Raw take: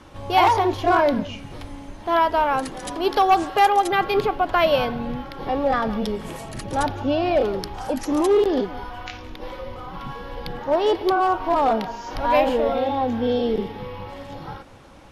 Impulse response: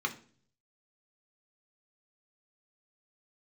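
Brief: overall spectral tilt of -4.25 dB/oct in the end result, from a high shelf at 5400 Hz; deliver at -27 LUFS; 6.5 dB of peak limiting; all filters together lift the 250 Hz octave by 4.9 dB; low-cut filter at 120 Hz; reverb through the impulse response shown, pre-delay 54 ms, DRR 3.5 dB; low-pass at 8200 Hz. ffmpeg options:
-filter_complex "[0:a]highpass=120,lowpass=8.2k,equalizer=f=250:t=o:g=6.5,highshelf=f=5.4k:g=-7,alimiter=limit=-12dB:level=0:latency=1,asplit=2[a][b];[1:a]atrim=start_sample=2205,adelay=54[c];[b][c]afir=irnorm=-1:irlink=0,volume=-9.5dB[d];[a][d]amix=inputs=2:normalize=0,volume=-6.5dB"

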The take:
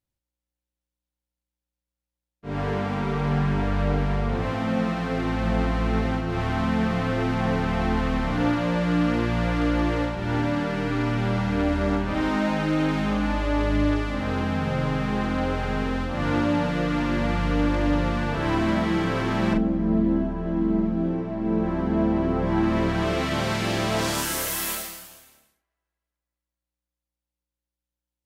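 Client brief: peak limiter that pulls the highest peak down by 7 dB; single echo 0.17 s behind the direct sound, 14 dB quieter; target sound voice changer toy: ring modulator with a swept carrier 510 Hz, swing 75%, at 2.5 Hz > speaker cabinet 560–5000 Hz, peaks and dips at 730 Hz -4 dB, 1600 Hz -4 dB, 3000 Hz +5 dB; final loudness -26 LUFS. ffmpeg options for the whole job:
-af "alimiter=limit=-17.5dB:level=0:latency=1,aecho=1:1:170:0.2,aeval=exprs='val(0)*sin(2*PI*510*n/s+510*0.75/2.5*sin(2*PI*2.5*n/s))':c=same,highpass=560,equalizer=f=730:t=q:w=4:g=-4,equalizer=f=1.6k:t=q:w=4:g=-4,equalizer=f=3k:t=q:w=4:g=5,lowpass=f=5k:w=0.5412,lowpass=f=5k:w=1.3066,volume=6.5dB"

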